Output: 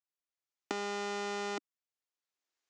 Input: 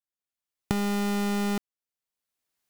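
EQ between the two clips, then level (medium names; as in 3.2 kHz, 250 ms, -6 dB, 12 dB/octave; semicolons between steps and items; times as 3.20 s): elliptic band-pass 300–6800 Hz, stop band 40 dB; -4.0 dB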